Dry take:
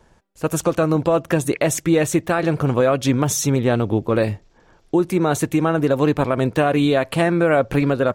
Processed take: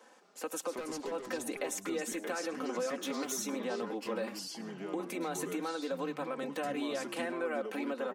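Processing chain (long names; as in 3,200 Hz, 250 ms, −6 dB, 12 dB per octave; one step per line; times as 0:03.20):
0:02.90–0:03.32: lower of the sound and its delayed copy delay 0.32 ms
Bessel high-pass filter 410 Hz, order 8
comb filter 3.9 ms, depth 76%
in parallel at +0.5 dB: brickwall limiter −18.5 dBFS, peak gain reduction 13 dB
on the sum: downward compressor 2 to 1, threshold −37 dBFS, peak gain reduction 15 dB
0:00.71–0:01.12: hard clipping −30.5 dBFS, distortion −18 dB
on a send: single-tap delay 106 ms −19 dB
on the sum: delay with pitch and tempo change per echo 208 ms, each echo −4 semitones, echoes 2, each echo −6 dB
level −8 dB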